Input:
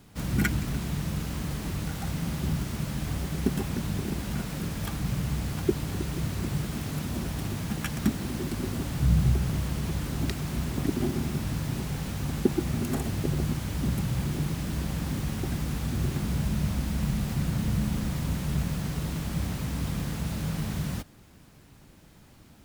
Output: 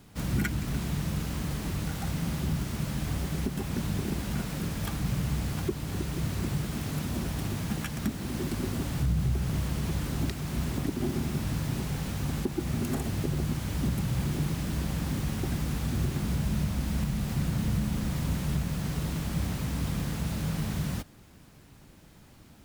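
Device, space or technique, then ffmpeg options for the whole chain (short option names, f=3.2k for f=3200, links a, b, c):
soft clipper into limiter: -af "asoftclip=type=tanh:threshold=-11.5dB,alimiter=limit=-19dB:level=0:latency=1:release=327"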